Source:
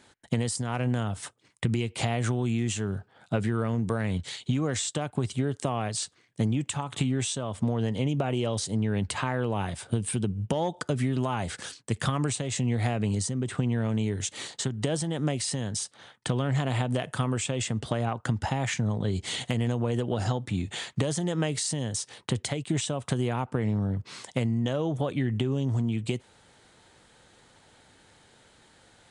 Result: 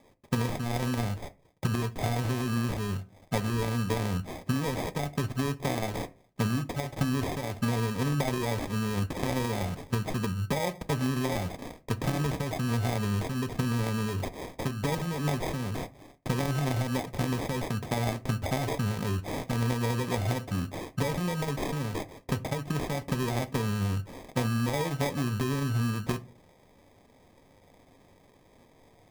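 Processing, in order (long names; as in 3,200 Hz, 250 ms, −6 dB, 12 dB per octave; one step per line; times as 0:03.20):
pitch vibrato 9.1 Hz 53 cents
in parallel at −8.5 dB: wave folding −30 dBFS
on the sum: harmonic generator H 7 −28 dB, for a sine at −11.5 dBFS
notch comb filter 320 Hz
decimation without filtering 31×
on a send at −11 dB: convolution reverb RT60 0.35 s, pre-delay 3 ms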